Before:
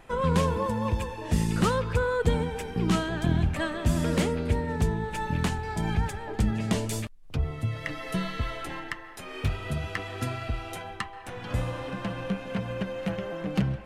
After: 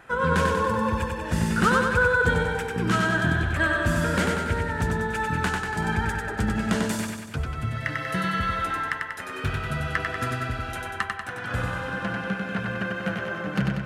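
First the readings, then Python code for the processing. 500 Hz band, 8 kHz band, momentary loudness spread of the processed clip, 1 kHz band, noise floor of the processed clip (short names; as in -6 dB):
+2.5 dB, +2.5 dB, 9 LU, +6.5 dB, -35 dBFS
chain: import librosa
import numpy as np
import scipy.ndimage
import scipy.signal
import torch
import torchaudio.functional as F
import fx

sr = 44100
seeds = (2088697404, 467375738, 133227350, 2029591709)

p1 = scipy.signal.sosfilt(scipy.signal.butter(2, 61.0, 'highpass', fs=sr, output='sos'), x)
p2 = fx.peak_eq(p1, sr, hz=1500.0, db=13.0, octaves=0.5)
y = p2 + fx.echo_feedback(p2, sr, ms=95, feedback_pct=58, wet_db=-3.5, dry=0)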